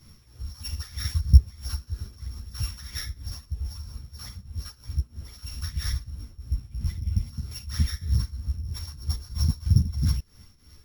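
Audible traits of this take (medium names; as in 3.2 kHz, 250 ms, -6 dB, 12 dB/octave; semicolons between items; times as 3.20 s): a buzz of ramps at a fixed pitch in blocks of 8 samples; tremolo triangle 3.1 Hz, depth 85%; a shimmering, thickened sound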